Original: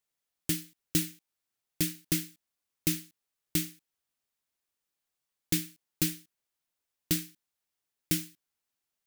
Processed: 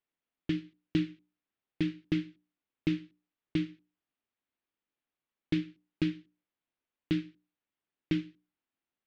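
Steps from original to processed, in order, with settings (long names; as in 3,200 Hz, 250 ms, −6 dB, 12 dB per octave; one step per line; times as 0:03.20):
low-pass filter 3,300 Hz 24 dB per octave
parametric band 280 Hz +8 dB 1 octave
mains-hum notches 60/120/180/240/300/360/420/480/540/600 Hz
level −2 dB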